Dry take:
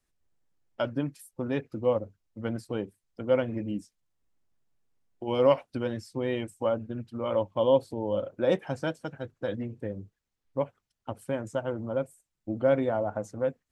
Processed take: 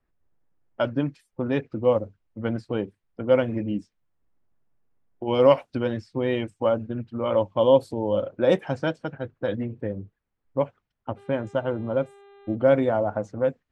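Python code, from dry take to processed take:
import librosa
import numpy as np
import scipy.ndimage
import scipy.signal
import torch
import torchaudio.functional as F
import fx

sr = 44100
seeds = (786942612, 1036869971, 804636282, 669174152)

y = fx.env_lowpass(x, sr, base_hz=1700.0, full_db=-20.5)
y = fx.dmg_buzz(y, sr, base_hz=400.0, harmonics=10, level_db=-56.0, tilt_db=-8, odd_only=False, at=(11.16, 12.54), fade=0.02)
y = y * librosa.db_to_amplitude(5.0)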